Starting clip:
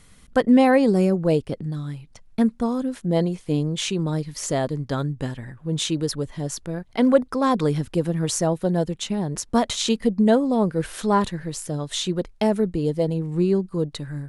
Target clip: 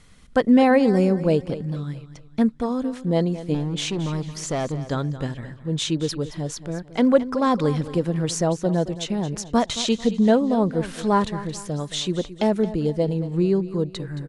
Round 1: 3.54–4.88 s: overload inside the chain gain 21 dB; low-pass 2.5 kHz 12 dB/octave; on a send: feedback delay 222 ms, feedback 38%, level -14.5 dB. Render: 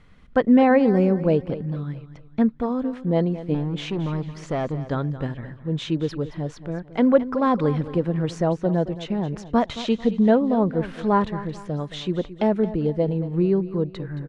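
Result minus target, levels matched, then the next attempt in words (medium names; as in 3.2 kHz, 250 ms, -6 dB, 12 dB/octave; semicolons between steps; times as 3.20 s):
8 kHz band -16.0 dB
3.54–4.88 s: overload inside the chain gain 21 dB; low-pass 7.7 kHz 12 dB/octave; on a send: feedback delay 222 ms, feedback 38%, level -14.5 dB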